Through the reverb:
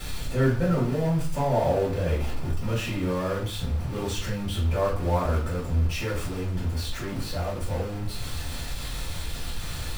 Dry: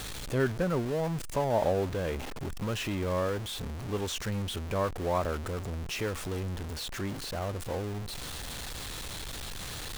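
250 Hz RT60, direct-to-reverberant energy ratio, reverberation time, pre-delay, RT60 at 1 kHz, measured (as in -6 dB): 0.65 s, -8.5 dB, 0.45 s, 3 ms, 0.45 s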